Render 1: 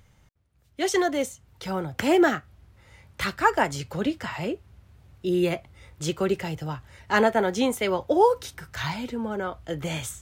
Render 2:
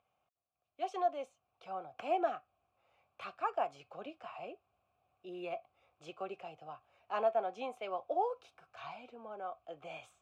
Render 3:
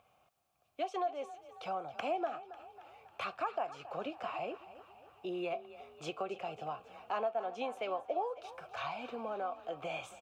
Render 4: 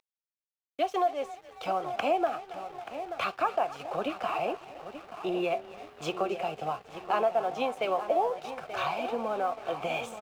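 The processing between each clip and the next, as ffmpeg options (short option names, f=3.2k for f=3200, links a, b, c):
-filter_complex "[0:a]asplit=3[a][b][c];[a]bandpass=f=730:t=q:w=8,volume=0dB[d];[b]bandpass=f=1.09k:t=q:w=8,volume=-6dB[e];[c]bandpass=f=2.44k:t=q:w=8,volume=-9dB[f];[d][e][f]amix=inputs=3:normalize=0,volume=-2.5dB"
-filter_complex "[0:a]acompressor=threshold=-48dB:ratio=3,asplit=7[a][b][c][d][e][f][g];[b]adelay=273,afreqshift=30,volume=-15.5dB[h];[c]adelay=546,afreqshift=60,volume=-20.2dB[i];[d]adelay=819,afreqshift=90,volume=-25dB[j];[e]adelay=1092,afreqshift=120,volume=-29.7dB[k];[f]adelay=1365,afreqshift=150,volume=-34.4dB[l];[g]adelay=1638,afreqshift=180,volume=-39.2dB[m];[a][h][i][j][k][l][m]amix=inputs=7:normalize=0,volume=11dB"
-filter_complex "[0:a]asplit=2[a][b];[b]adelay=881,lowpass=f=2.5k:p=1,volume=-10dB,asplit=2[c][d];[d]adelay=881,lowpass=f=2.5k:p=1,volume=0.49,asplit=2[e][f];[f]adelay=881,lowpass=f=2.5k:p=1,volume=0.49,asplit=2[g][h];[h]adelay=881,lowpass=f=2.5k:p=1,volume=0.49,asplit=2[i][j];[j]adelay=881,lowpass=f=2.5k:p=1,volume=0.49[k];[a][c][e][g][i][k]amix=inputs=6:normalize=0,aeval=exprs='sgn(val(0))*max(abs(val(0))-0.00112,0)':c=same,volume=8.5dB"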